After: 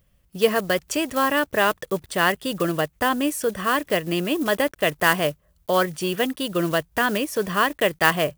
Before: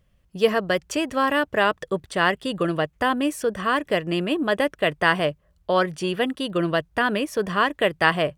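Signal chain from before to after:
one scale factor per block 5 bits
high-shelf EQ 8,700 Hz +11 dB

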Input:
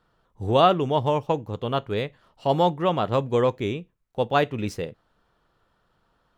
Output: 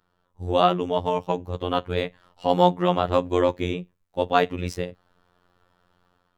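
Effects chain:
automatic gain control gain up to 7 dB
phases set to zero 89.1 Hz
level −2 dB

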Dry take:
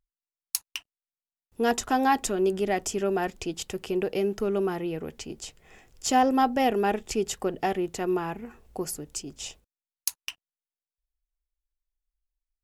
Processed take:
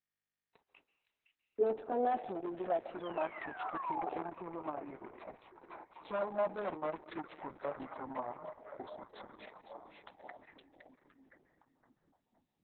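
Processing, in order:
pitch glide at a constant tempo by −8.5 semitones starting unshifted
noise gate with hold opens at −48 dBFS
high-shelf EQ 4,200 Hz −8 dB
hard clipping −24.5 dBFS, distortion −10 dB
echo through a band-pass that steps 514 ms, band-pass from 2,700 Hz, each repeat −0.7 octaves, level −4 dB
sound drawn into the spectrogram fall, 0:02.99–0:04.10, 710–3,500 Hz −39 dBFS
convolution reverb RT60 1.1 s, pre-delay 130 ms, DRR 17 dB
band-pass filter sweep 400 Hz → 890 Hz, 0:01.31–0:03.30
level +2.5 dB
Opus 6 kbit/s 48,000 Hz

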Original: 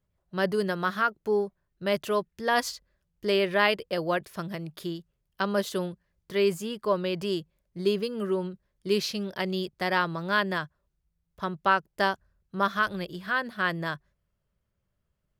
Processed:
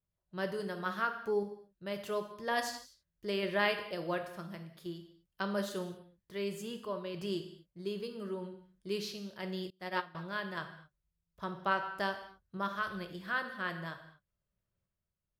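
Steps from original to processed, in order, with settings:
sample-and-hold tremolo
reverb whose tail is shaped and stops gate 270 ms falling, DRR 5.5 dB
0:09.70–0:10.15: expander for the loud parts 2.5 to 1, over −39 dBFS
level −7.5 dB

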